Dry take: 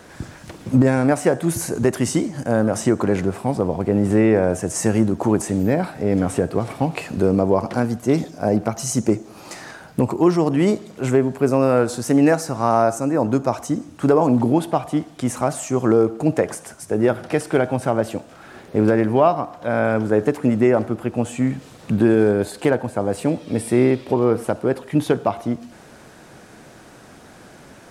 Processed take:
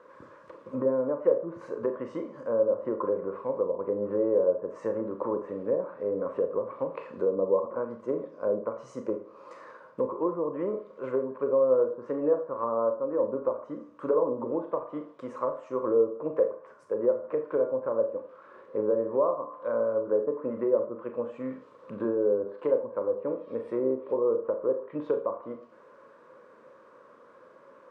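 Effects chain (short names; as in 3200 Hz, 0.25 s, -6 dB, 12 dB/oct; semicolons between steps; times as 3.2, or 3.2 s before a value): double band-pass 750 Hz, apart 1 oct; treble ducked by the level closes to 730 Hz, closed at -24.5 dBFS; Schroeder reverb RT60 0.34 s, combs from 27 ms, DRR 6 dB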